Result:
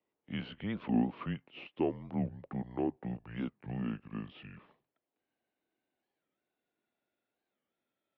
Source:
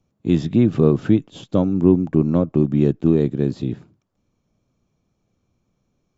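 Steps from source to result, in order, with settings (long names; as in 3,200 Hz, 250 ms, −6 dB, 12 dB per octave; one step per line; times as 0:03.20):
gliding playback speed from 89% → 62%
single-sideband voice off tune −110 Hz 400–3,500 Hz
wow of a warped record 45 rpm, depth 250 cents
level −6.5 dB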